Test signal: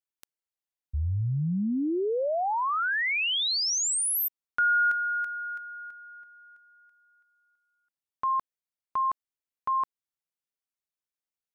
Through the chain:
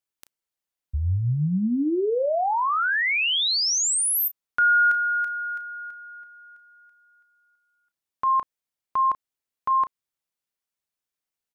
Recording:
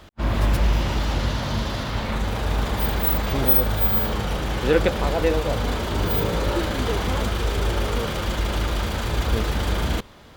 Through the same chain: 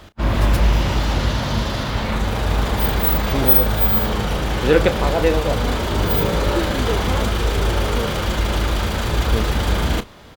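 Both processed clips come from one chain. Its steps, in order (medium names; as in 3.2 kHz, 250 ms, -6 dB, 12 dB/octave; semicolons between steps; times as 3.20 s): doubling 33 ms -13 dB; trim +4 dB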